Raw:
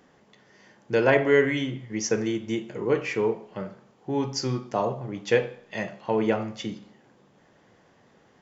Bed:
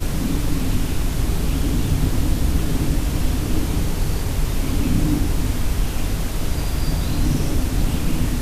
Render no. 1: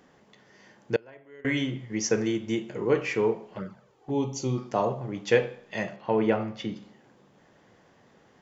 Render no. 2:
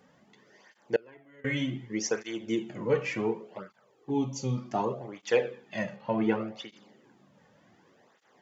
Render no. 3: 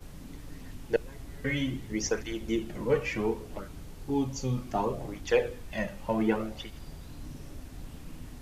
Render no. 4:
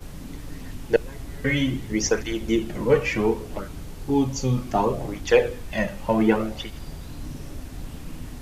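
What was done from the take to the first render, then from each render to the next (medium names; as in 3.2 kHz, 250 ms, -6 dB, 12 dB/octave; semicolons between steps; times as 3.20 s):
0.96–1.45 s: gate -13 dBFS, range -30 dB; 3.56–4.58 s: touch-sensitive flanger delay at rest 3.2 ms, full sweep at -26.5 dBFS; 5.96–6.76 s: Gaussian low-pass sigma 1.6 samples
cancelling through-zero flanger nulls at 0.67 Hz, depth 3.1 ms
add bed -23.5 dB
trim +7.5 dB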